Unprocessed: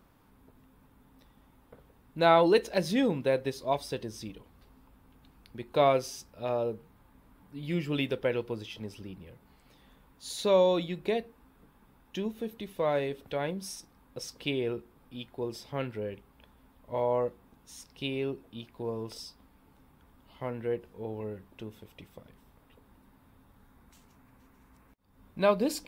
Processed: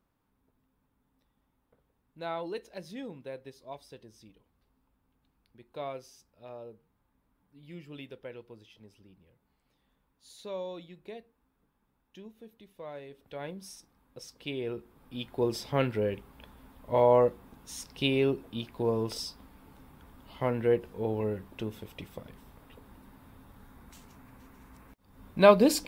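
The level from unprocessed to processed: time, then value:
0:13.05 −14.5 dB
0:13.45 −6.5 dB
0:14.40 −6.5 dB
0:15.43 +6.5 dB

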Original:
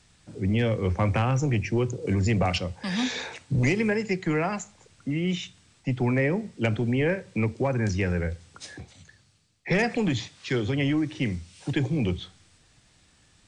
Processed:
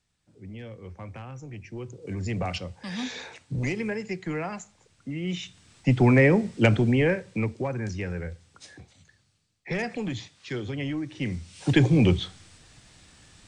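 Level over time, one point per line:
0:01.46 −16.5 dB
0:02.38 −5.5 dB
0:05.16 −5.5 dB
0:05.89 +6 dB
0:06.63 +6 dB
0:07.87 −6 dB
0:11.07 −6 dB
0:11.73 +6.5 dB

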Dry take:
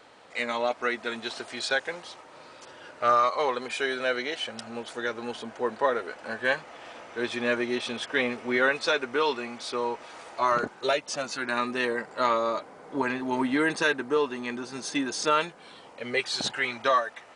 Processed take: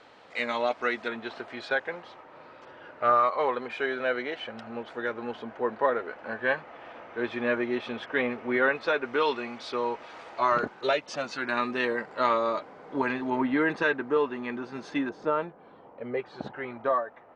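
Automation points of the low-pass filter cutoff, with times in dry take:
4,900 Hz
from 0:01.08 2,200 Hz
from 0:09.05 3,900 Hz
from 0:13.30 2,300 Hz
from 0:15.09 1,000 Hz

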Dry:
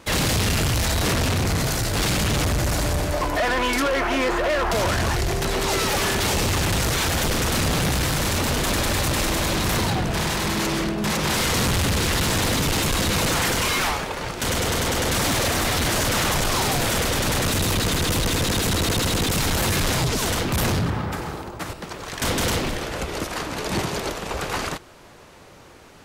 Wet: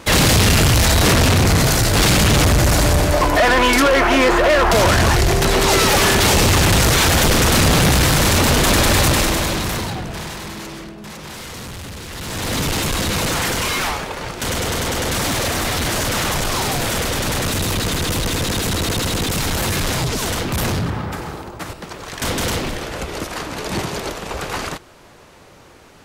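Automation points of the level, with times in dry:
0:09.06 +8 dB
0:09.90 −2.5 dB
0:11.04 −11 dB
0:12.08 −11 dB
0:12.58 +1.5 dB

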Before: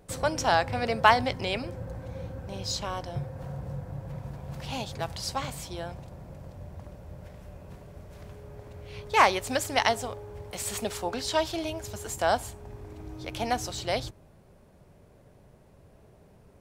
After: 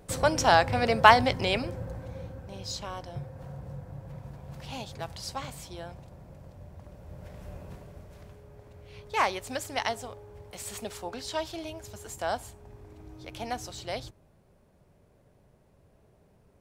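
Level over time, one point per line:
0:01.54 +3 dB
0:02.48 −4.5 dB
0:06.81 −4.5 dB
0:07.53 +3 dB
0:08.46 −6 dB

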